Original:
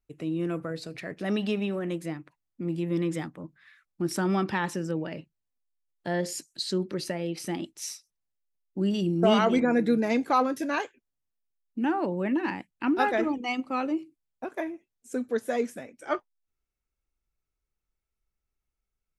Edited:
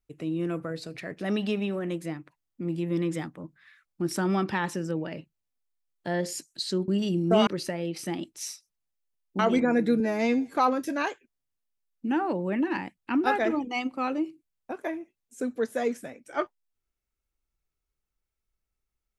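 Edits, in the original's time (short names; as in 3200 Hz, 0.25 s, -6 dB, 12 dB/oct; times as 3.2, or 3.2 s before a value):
8.8–9.39 move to 6.88
10–10.27 stretch 2×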